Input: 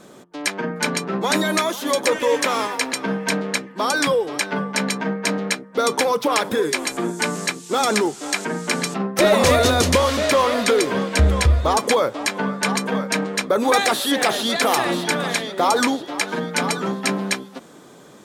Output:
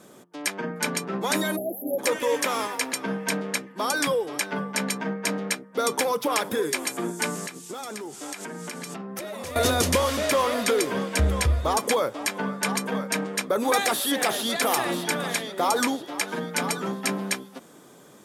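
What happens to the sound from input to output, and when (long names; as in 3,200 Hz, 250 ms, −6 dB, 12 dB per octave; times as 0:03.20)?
0:01.56–0:01.99: time-frequency box erased 830–11,000 Hz
0:07.47–0:09.56: downward compressor 16 to 1, threshold −26 dBFS
whole clip: high-pass filter 52 Hz; parametric band 12,000 Hz +8.5 dB 0.78 octaves; notch filter 4,100 Hz, Q 19; level −5.5 dB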